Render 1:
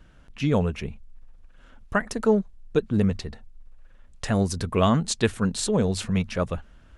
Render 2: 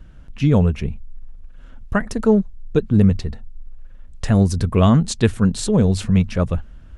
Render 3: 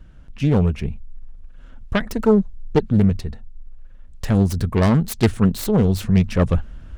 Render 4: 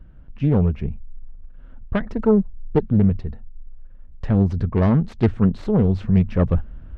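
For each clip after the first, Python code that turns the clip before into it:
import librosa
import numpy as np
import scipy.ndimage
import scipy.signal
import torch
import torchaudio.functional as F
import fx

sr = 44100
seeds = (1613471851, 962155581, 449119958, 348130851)

y1 = fx.low_shelf(x, sr, hz=250.0, db=11.0)
y1 = y1 * 10.0 ** (1.0 / 20.0)
y2 = fx.self_delay(y1, sr, depth_ms=0.38)
y2 = fx.rider(y2, sr, range_db=4, speed_s=0.5)
y3 = fx.spacing_loss(y2, sr, db_at_10k=35)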